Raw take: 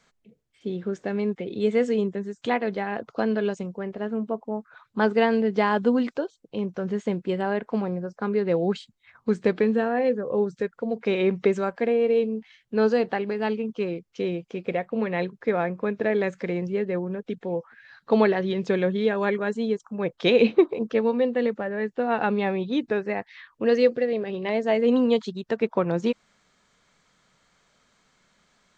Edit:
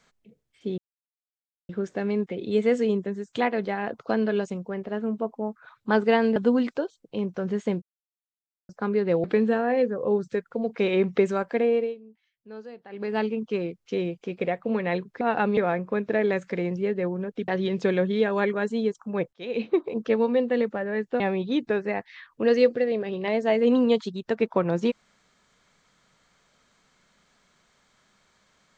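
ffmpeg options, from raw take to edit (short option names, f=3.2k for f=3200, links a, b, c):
-filter_complex "[0:a]asplit=13[a][b][c][d][e][f][g][h][i][j][k][l][m];[a]atrim=end=0.78,asetpts=PTS-STARTPTS,afade=t=out:st=0.776:d=0.004:c=hsin,apad=pad_dur=0.91[n];[b]atrim=start=0.78:end=5.452,asetpts=PTS-STARTPTS,afade=t=in:d=0.004:c=hsin[o];[c]atrim=start=5.758:end=7.22,asetpts=PTS-STARTPTS,afade=t=out:st=1.458:d=0.004:c=hsin[p];[d]atrim=start=7.22:end=8.09,asetpts=PTS-STARTPTS,volume=0[q];[e]atrim=start=8.09:end=8.642,asetpts=PTS-STARTPTS,afade=t=in:d=0.004:c=hsin[r];[f]atrim=start=9.508:end=12.22,asetpts=PTS-STARTPTS,afade=t=out:st=2.492:d=0.22:silence=0.1[s];[g]atrim=start=12.22:end=13.16,asetpts=PTS-STARTPTS,volume=-20dB[t];[h]atrim=start=13.16:end=15.482,asetpts=PTS-STARTPTS,afade=t=in:d=0.22:silence=0.1[u];[i]atrim=start=22.048:end=22.412[v];[j]atrim=start=15.478:end=17.392[w];[k]atrim=start=18.328:end=20.18,asetpts=PTS-STARTPTS,afade=t=out:st=1.848:d=0.004:c=hsin[x];[l]atrim=start=20.18:end=22.052,asetpts=PTS-STARTPTS,afade=t=in:d=0.76[y];[m]atrim=start=22.408[z];[n][o]concat=n=2:v=0:a=1[aa];[p][q][r]concat=n=3:v=0:a=1[ab];[aa][ab]acrossfade=d=0.004:c1=hsin:c2=hsin[ac];[s][t][u]concat=n=3:v=0:a=1[ad];[ac][ad]acrossfade=d=0.004:c1=hsin:c2=hsin[ae];[ae][v]acrossfade=d=0.004:c1=hsin:c2=hsin[af];[af][w]acrossfade=d=0.004:c1=hsin:c2=hsin[ag];[x][y]concat=n=2:v=0:a=1[ah];[ag][ah]acrossfade=d=0.004:c1=hsin:c2=hsin[ai];[ai][z]acrossfade=d=0.004:c1=hsin:c2=hsin"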